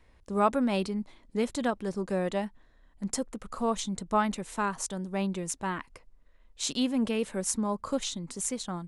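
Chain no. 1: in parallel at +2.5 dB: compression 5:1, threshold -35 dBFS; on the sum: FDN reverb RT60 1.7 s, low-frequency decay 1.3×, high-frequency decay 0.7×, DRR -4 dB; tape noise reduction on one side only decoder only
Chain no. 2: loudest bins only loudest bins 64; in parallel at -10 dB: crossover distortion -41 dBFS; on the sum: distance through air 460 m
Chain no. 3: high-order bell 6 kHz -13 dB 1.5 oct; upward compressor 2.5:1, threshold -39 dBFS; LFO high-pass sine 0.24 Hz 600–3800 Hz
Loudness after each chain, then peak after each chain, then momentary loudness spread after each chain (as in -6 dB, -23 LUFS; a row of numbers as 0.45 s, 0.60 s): -22.0 LUFS, -31.0 LUFS, -36.0 LUFS; -7.0 dBFS, -12.5 dBFS, -14.5 dBFS; 9 LU, 11 LU, 17 LU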